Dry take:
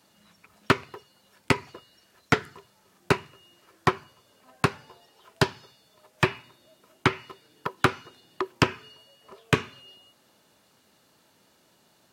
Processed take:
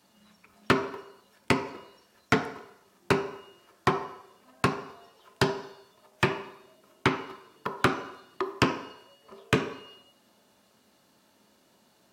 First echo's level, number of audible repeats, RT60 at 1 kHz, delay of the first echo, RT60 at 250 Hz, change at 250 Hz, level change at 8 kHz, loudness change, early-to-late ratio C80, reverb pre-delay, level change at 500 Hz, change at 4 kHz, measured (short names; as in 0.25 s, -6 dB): none, none, 0.80 s, none, 0.55 s, 0.0 dB, -2.0 dB, -2.0 dB, 12.0 dB, 3 ms, 0.0 dB, -2.0 dB